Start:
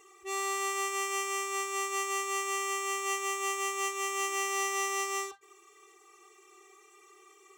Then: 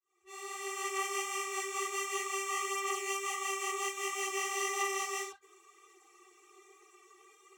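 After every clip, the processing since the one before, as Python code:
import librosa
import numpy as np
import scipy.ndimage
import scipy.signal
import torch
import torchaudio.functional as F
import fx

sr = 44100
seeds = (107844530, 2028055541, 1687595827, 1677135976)

y = fx.fade_in_head(x, sr, length_s=1.03)
y = fx.chorus_voices(y, sr, voices=4, hz=1.3, base_ms=11, depth_ms=3.0, mix_pct=65)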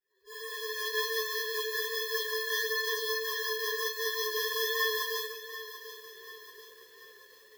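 y = fx.partial_stretch(x, sr, pct=126)
y = fx.echo_crushed(y, sr, ms=738, feedback_pct=55, bits=10, wet_db=-13.0)
y = F.gain(torch.from_numpy(y), 6.5).numpy()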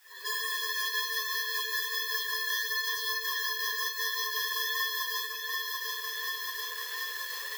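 y = scipy.signal.sosfilt(scipy.signal.butter(4, 720.0, 'highpass', fs=sr, output='sos'), x)
y = fx.band_squash(y, sr, depth_pct=100)
y = F.gain(torch.from_numpy(y), 1.5).numpy()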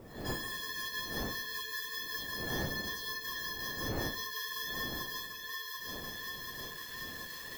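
y = fx.dmg_wind(x, sr, seeds[0], corner_hz=440.0, level_db=-38.0)
y = F.gain(torch.from_numpy(y), -7.5).numpy()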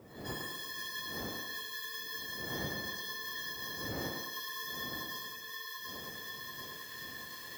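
y = scipy.signal.sosfilt(scipy.signal.butter(2, 75.0, 'highpass', fs=sr, output='sos'), x)
y = fx.echo_thinned(y, sr, ms=107, feedback_pct=49, hz=160.0, wet_db=-4.0)
y = F.gain(torch.from_numpy(y), -3.5).numpy()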